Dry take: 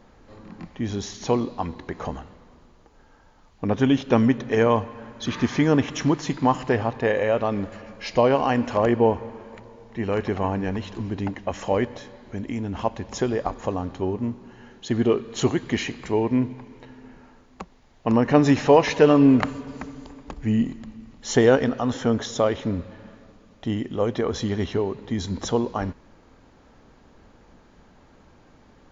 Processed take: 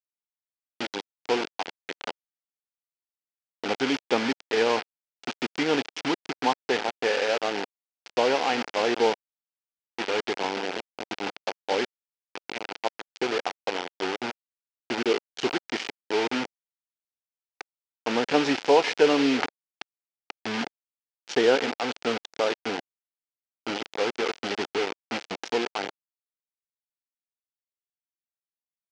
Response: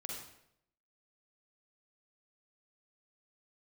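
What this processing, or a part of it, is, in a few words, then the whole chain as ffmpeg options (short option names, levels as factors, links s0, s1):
hand-held game console: -af "acrusher=bits=3:mix=0:aa=0.000001,highpass=450,equalizer=f=610:t=q:w=4:g=-7,equalizer=f=1100:t=q:w=4:g=-9,equalizer=f=1800:t=q:w=4:g=-4,equalizer=f=3900:t=q:w=4:g=-4,lowpass=f=5000:w=0.5412,lowpass=f=5000:w=1.3066,volume=1.12"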